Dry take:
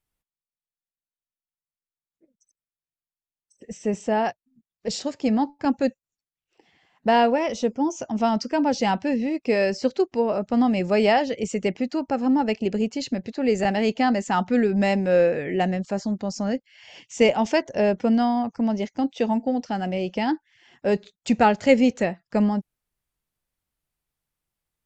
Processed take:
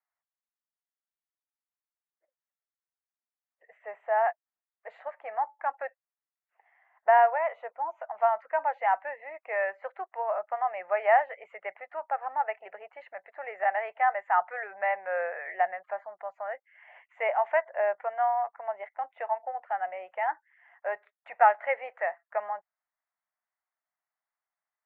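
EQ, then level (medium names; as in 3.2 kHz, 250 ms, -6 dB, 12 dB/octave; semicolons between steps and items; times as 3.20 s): elliptic band-pass 660–2000 Hz, stop band 50 dB; 0.0 dB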